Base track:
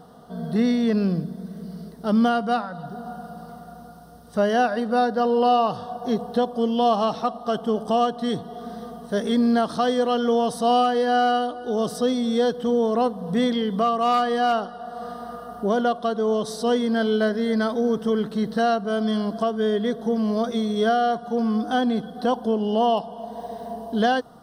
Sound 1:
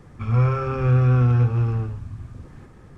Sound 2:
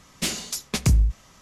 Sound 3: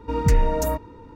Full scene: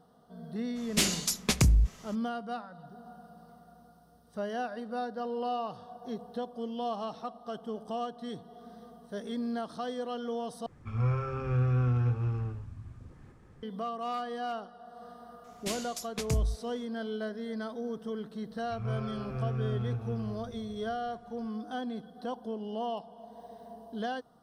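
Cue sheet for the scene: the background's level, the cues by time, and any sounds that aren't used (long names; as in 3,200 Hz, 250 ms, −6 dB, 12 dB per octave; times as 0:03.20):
base track −14.5 dB
0:00.75: mix in 2, fades 0.02 s + downward compressor, threshold −18 dBFS
0:10.66: overwrite with 1 −10 dB
0:15.44: mix in 2 −10.5 dB
0:18.51: mix in 1 −16 dB
not used: 3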